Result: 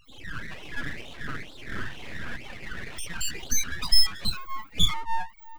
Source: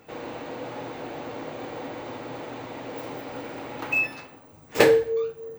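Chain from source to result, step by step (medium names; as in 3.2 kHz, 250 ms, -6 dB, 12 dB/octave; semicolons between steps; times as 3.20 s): dynamic bell 350 Hz, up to +3 dB, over -39 dBFS, Q 0.71; LFO high-pass sine 2.1 Hz 730–1700 Hz; loudest bins only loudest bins 4; ever faster or slower copies 217 ms, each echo +3 st, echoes 3, each echo -6 dB; full-wave rectifier; 1.72–2.36 s: doubling 47 ms -6 dB; trim +6.5 dB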